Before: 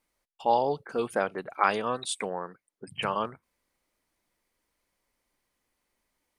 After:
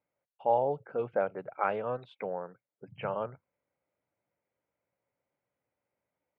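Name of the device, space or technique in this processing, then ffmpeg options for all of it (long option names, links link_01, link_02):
bass cabinet: -af "highpass=frequency=84:width=0.5412,highpass=frequency=84:width=1.3066,equalizer=frequency=120:width_type=q:width=4:gain=5,equalizer=frequency=230:width_type=q:width=4:gain=-6,equalizer=frequency=340:width_type=q:width=4:gain=-5,equalizer=frequency=560:width_type=q:width=4:gain=5,equalizer=frequency=1100:width_type=q:width=4:gain=-8,equalizer=frequency=1800:width_type=q:width=4:gain=-8,lowpass=frequency=2100:width=0.5412,lowpass=frequency=2100:width=1.3066,volume=-3dB"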